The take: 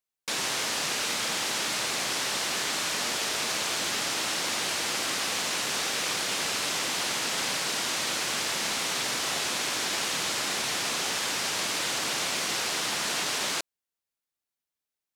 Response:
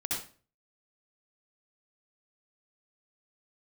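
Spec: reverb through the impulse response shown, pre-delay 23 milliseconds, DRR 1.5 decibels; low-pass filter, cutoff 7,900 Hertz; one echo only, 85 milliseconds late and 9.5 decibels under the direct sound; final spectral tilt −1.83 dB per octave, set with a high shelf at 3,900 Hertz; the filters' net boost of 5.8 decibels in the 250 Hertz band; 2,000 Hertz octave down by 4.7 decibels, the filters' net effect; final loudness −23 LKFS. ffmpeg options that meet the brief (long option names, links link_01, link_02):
-filter_complex "[0:a]lowpass=7900,equalizer=frequency=250:width_type=o:gain=7.5,equalizer=frequency=2000:width_type=o:gain=-5,highshelf=frequency=3900:gain=-4,aecho=1:1:85:0.335,asplit=2[link_01][link_02];[1:a]atrim=start_sample=2205,adelay=23[link_03];[link_02][link_03]afir=irnorm=-1:irlink=0,volume=-6dB[link_04];[link_01][link_04]amix=inputs=2:normalize=0,volume=4.5dB"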